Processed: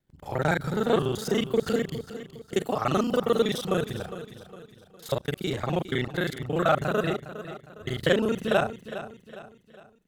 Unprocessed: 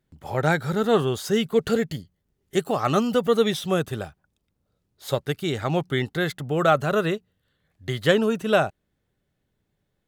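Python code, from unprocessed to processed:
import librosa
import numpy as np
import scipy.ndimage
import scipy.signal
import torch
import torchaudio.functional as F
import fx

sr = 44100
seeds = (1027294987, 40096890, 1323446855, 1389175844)

y = fx.local_reverse(x, sr, ms=32.0)
y = fx.echo_feedback(y, sr, ms=409, feedback_pct=42, wet_db=-13.0)
y = y * librosa.db_to_amplitude(-3.0)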